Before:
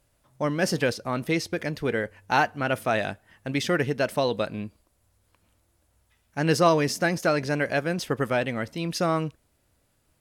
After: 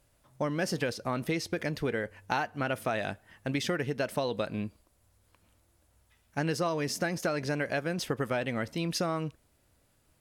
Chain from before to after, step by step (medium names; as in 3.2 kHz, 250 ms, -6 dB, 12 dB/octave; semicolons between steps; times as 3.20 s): compression 6:1, threshold -27 dBFS, peak gain reduction 12.5 dB